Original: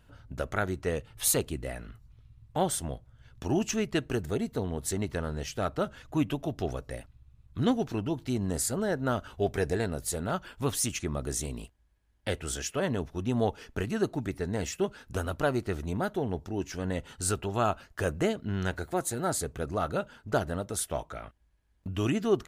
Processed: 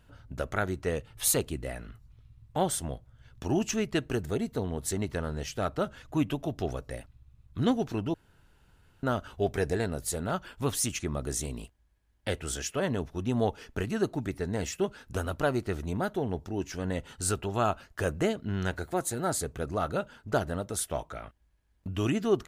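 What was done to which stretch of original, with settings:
0:08.14–0:09.03: fill with room tone

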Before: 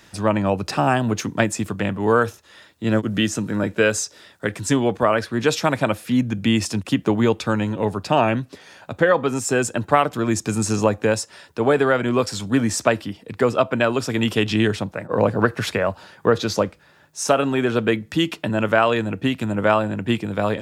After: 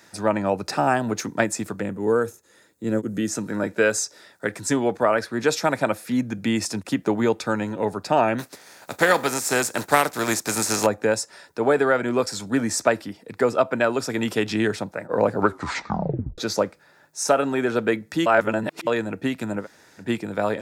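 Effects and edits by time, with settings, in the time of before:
0:01.81–0:03.28: gain on a spectral selection 550–6,200 Hz −8 dB
0:08.38–0:10.85: compressing power law on the bin magnitudes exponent 0.55
0:15.34: tape stop 1.04 s
0:18.26–0:18.87: reverse
0:19.62–0:20.02: fill with room tone, crossfade 0.10 s
whole clip: high-pass filter 290 Hz 6 dB per octave; parametric band 3,000 Hz −9.5 dB 0.5 octaves; notch filter 1,100 Hz, Q 11

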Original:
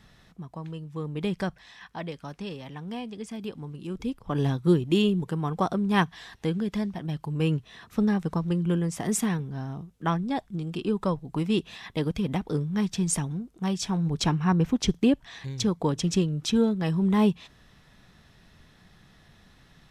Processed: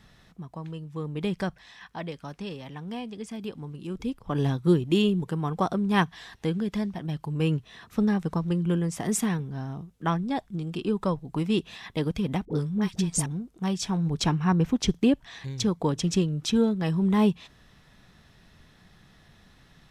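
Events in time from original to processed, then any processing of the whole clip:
0:12.45–0:13.26: all-pass dispersion highs, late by 57 ms, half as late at 670 Hz

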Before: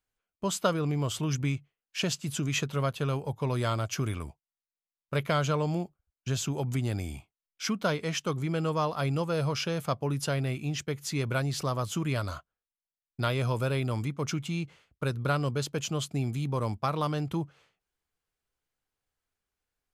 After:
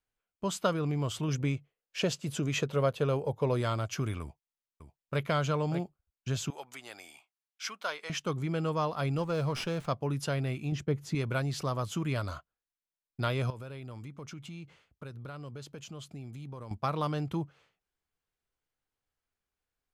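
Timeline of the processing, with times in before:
0:01.28–0:03.61: parametric band 500 Hz +8.5 dB 0.86 octaves
0:04.21–0:05.22: delay throw 590 ms, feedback 15%, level −10 dB
0:06.50–0:08.10: high-pass filter 830 Hz
0:09.18–0:09.87: windowed peak hold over 3 samples
0:10.72–0:11.15: tilt shelving filter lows +6.5 dB
0:13.50–0:16.71: downward compressor 4 to 1, threshold −40 dBFS
whole clip: high-shelf EQ 6,100 Hz −5.5 dB; level −2 dB

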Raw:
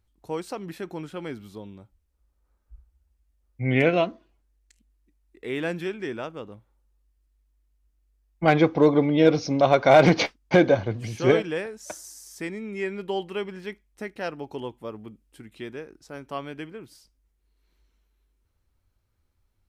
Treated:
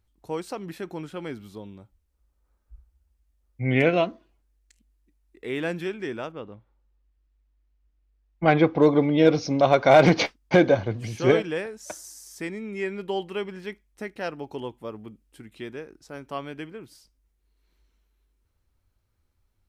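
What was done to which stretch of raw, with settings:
0:06.32–0:08.81: low-pass filter 3,800 Hz

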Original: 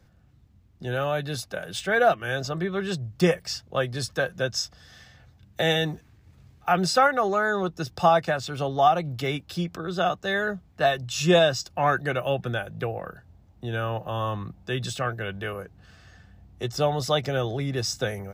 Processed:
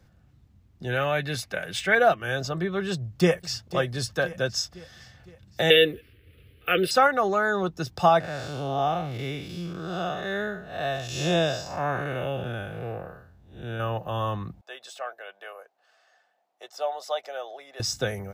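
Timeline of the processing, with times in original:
0:00.89–0:01.95: parametric band 2,100 Hz +10 dB 0.72 octaves
0:02.92–0:03.62: delay throw 510 ms, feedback 50%, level −13 dB
0:05.70–0:06.91: drawn EQ curve 100 Hz 0 dB, 160 Hz −9 dB, 330 Hz +4 dB, 480 Hz +11 dB, 860 Hz −22 dB, 1,300 Hz −1 dB, 3,000 Hz +13 dB, 6,800 Hz −24 dB, 10,000 Hz +8 dB
0:08.20–0:13.80: spectrum smeared in time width 203 ms
0:14.61–0:17.80: four-pole ladder high-pass 560 Hz, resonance 50%

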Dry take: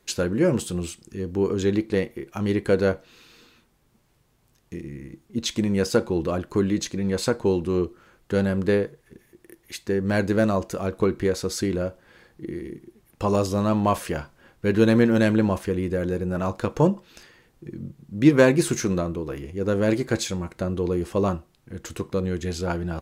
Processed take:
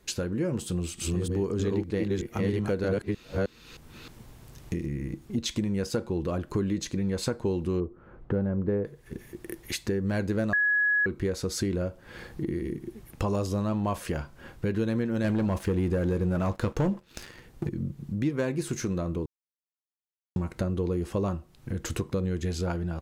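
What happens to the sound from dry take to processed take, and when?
0:00.66–0:04.86: delay that plays each chunk backwards 311 ms, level 0 dB
0:07.80–0:08.85: low-pass filter 1,100 Hz
0:10.53–0:11.06: beep over 1,680 Hz −9.5 dBFS
0:15.24–0:17.69: leveller curve on the samples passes 2
0:19.26–0:20.36: silence
whole clip: automatic gain control gain up to 9.5 dB; low-shelf EQ 180 Hz +7 dB; downward compressor 3 to 1, threshold −31 dBFS

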